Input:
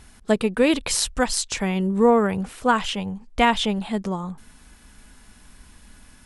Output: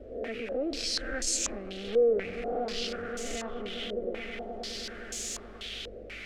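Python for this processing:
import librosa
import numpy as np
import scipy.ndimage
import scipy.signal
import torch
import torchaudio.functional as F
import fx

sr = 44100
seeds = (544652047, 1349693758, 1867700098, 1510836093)

p1 = fx.spec_swells(x, sr, rise_s=0.51)
p2 = fx.doppler_pass(p1, sr, speed_mps=16, closest_m=13.0, pass_at_s=2.16)
p3 = fx.dmg_buzz(p2, sr, base_hz=50.0, harmonics=5, level_db=-53.0, tilt_db=-4, odd_only=False)
p4 = fx.low_shelf(p3, sr, hz=350.0, db=5.0)
p5 = p4 + fx.echo_swell(p4, sr, ms=105, loudest=5, wet_db=-17.0, dry=0)
p6 = fx.quant_dither(p5, sr, seeds[0], bits=6, dither='triangular')
p7 = fx.over_compress(p6, sr, threshold_db=-44.0, ratio=-1.0)
p8 = p6 + (p7 * librosa.db_to_amplitude(-1.0))
p9 = 10.0 ** (-23.0 / 20.0) * np.tanh(p8 / 10.0 ** (-23.0 / 20.0))
p10 = fx.fixed_phaser(p9, sr, hz=400.0, stages=4)
p11 = fx.filter_held_lowpass(p10, sr, hz=4.1, low_hz=520.0, high_hz=6900.0)
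y = p11 * librosa.db_to_amplitude(-6.0)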